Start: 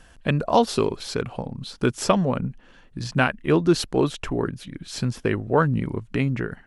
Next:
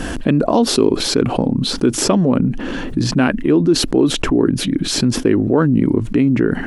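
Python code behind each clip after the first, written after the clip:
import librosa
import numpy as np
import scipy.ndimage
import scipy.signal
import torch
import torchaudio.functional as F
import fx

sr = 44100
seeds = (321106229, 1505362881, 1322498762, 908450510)

y = fx.peak_eq(x, sr, hz=290.0, db=14.5, octaves=1.2)
y = fx.env_flatten(y, sr, amount_pct=70)
y = y * librosa.db_to_amplitude(-8.0)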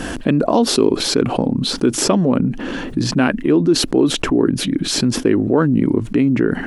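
y = fx.low_shelf(x, sr, hz=97.0, db=-6.5)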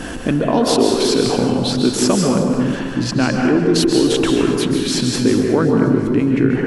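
y = fx.echo_feedback(x, sr, ms=361, feedback_pct=49, wet_db=-19.5)
y = fx.rev_plate(y, sr, seeds[0], rt60_s=1.6, hf_ratio=0.6, predelay_ms=120, drr_db=0.5)
y = y * librosa.db_to_amplitude(-2.0)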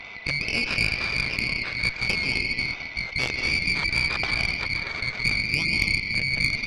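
y = fx.band_swap(x, sr, width_hz=2000)
y = scipy.ndimage.gaussian_filter1d(y, 3.1, mode='constant')
y = fx.cheby_harmonics(y, sr, harmonics=(2, 3, 6), levels_db=(-8, -18, -21), full_scale_db=-5.0)
y = y * librosa.db_to_amplitude(-4.0)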